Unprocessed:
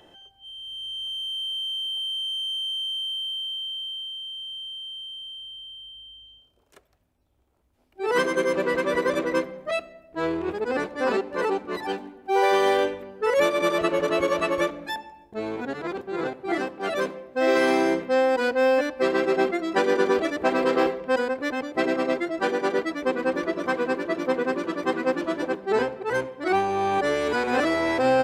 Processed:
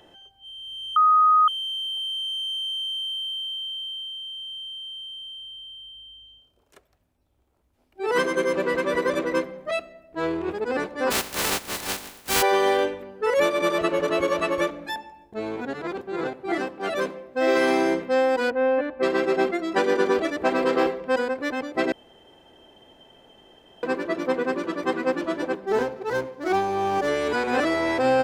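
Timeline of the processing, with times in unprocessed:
0.96–1.48 s: bleep 1.25 kHz -13.5 dBFS
11.10–12.41 s: spectral contrast reduction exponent 0.22
18.50–19.03 s: distance through air 490 m
21.92–23.83 s: room tone
25.67–27.08 s: median filter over 15 samples

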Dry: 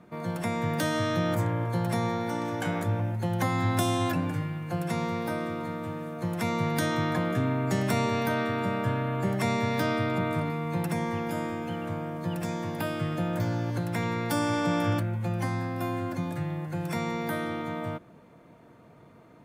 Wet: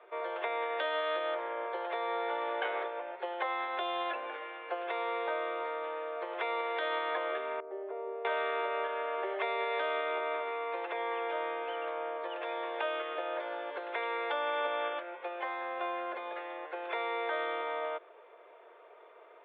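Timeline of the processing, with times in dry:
7.60–8.25 s: ladder band-pass 430 Hz, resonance 40%
whole clip: compression, threshold -28 dBFS; Chebyshev band-pass 390–3500 Hz, order 5; trim +2.5 dB

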